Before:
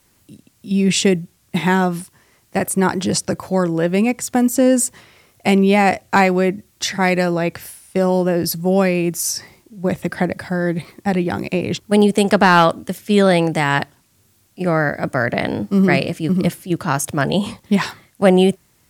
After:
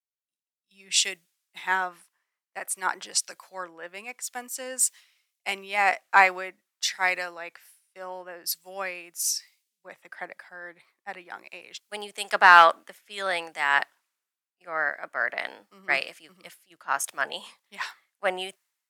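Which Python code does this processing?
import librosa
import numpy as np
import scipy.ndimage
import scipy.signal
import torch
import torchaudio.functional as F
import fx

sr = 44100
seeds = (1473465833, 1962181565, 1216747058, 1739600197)

y = scipy.signal.sosfilt(scipy.signal.butter(2, 1300.0, 'highpass', fs=sr, output='sos'), x)
y = fx.high_shelf(y, sr, hz=2300.0, db=-8.5)
y = fx.band_widen(y, sr, depth_pct=100)
y = y * librosa.db_to_amplitude(-2.5)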